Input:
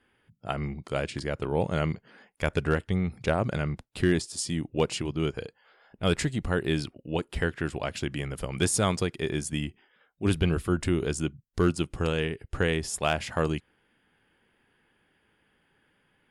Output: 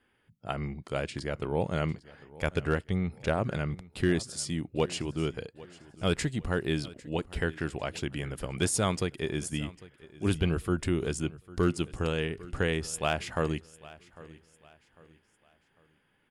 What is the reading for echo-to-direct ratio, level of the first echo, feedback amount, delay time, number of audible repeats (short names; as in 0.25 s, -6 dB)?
-19.5 dB, -20.0 dB, 36%, 0.8 s, 2